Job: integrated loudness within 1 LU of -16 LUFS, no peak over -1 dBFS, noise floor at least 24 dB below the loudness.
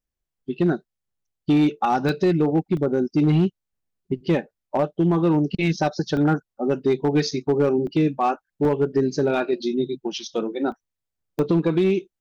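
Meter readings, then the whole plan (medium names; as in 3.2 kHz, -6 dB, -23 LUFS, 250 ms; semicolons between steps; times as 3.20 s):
clipped samples 1.4%; clipping level -13.0 dBFS; dropouts 7; longest dropout 1.2 ms; loudness -22.5 LUFS; peak level -13.0 dBFS; loudness target -16.0 LUFS
-> clip repair -13 dBFS; interpolate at 2.09/2.77/6.17/7.87/8.65/10.72/11.39 s, 1.2 ms; trim +6.5 dB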